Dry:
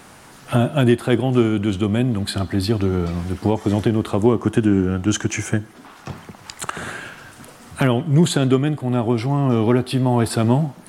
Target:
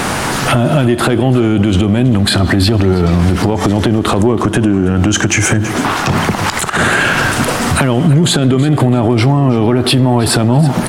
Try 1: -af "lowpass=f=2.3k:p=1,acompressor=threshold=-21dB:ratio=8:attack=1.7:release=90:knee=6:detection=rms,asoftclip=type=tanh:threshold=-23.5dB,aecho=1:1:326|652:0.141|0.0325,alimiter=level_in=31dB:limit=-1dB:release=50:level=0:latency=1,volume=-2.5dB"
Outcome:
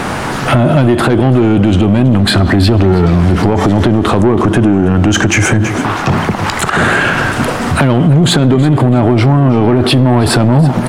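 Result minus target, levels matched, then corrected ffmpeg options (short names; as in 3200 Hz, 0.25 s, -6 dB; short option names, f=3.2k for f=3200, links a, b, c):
compressor: peak gain reduction -9 dB; 8000 Hz band -5.0 dB
-af "lowpass=f=7.9k:p=1,acompressor=threshold=-31dB:ratio=8:attack=1.7:release=90:knee=6:detection=rms,asoftclip=type=tanh:threshold=-23.5dB,aecho=1:1:326|652:0.141|0.0325,alimiter=level_in=31dB:limit=-1dB:release=50:level=0:latency=1,volume=-2.5dB"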